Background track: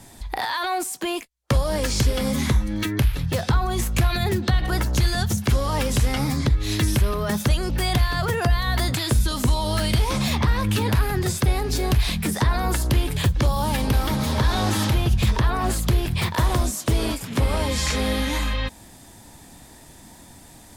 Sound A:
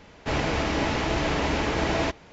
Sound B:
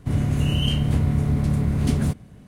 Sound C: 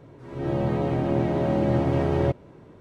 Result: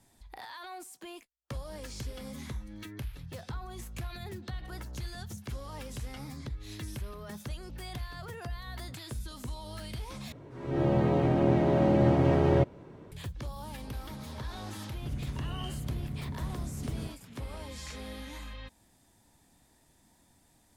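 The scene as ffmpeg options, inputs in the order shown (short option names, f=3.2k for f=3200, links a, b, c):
-filter_complex "[0:a]volume=-19dB,asplit=2[a][b];[a]atrim=end=10.324[c];[3:a]atrim=end=2.8,asetpts=PTS-STARTPTS,volume=-1dB[d];[b]atrim=start=13.116[e];[2:a]atrim=end=2.47,asetpts=PTS-STARTPTS,volume=-17dB,afade=t=in:d=0.004:c=hsin,afade=t=out:st=2.466:d=0.004:c=hsin,adelay=14960[f];[c][d]acrossfade=d=0.004:c1=hsin:c2=hsin[g];[g][e]acrossfade=d=0.004:c1=hsin:c2=hsin[h];[h][f]amix=inputs=2:normalize=0"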